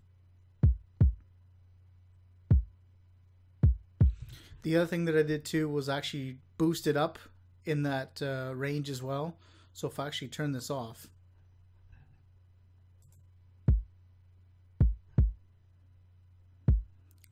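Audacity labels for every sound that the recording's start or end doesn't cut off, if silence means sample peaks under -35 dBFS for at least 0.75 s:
2.510000	2.610000	sound
3.630000	10.870000	sound
13.680000	13.800000	sound
14.810000	15.300000	sound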